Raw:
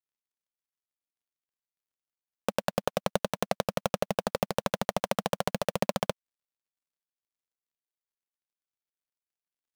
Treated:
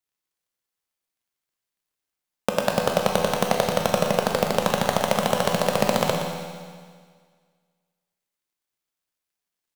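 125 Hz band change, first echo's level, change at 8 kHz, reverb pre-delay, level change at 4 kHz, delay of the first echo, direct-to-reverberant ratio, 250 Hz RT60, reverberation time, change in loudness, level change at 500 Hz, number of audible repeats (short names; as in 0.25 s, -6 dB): +8.0 dB, -10.5 dB, +9.0 dB, 12 ms, +9.0 dB, 0.119 s, 0.5 dB, 1.8 s, 1.8 s, +8.5 dB, +8.5 dB, 1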